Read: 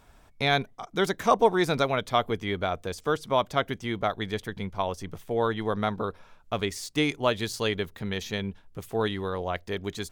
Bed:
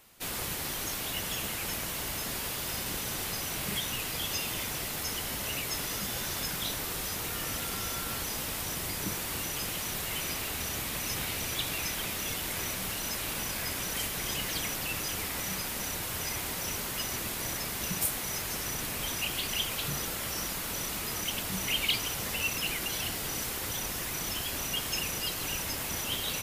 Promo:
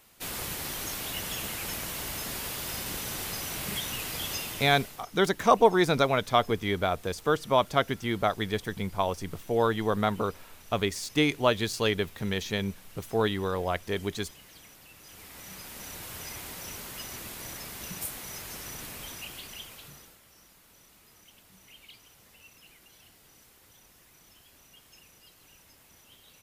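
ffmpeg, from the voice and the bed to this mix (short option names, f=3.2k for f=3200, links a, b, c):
-filter_complex "[0:a]adelay=4200,volume=1dB[a];[1:a]volume=12.5dB,afade=t=out:st=4.3:d=0.75:silence=0.11885,afade=t=in:st=14.98:d=1.07:silence=0.223872,afade=t=out:st=18.83:d=1.38:silence=0.133352[b];[a][b]amix=inputs=2:normalize=0"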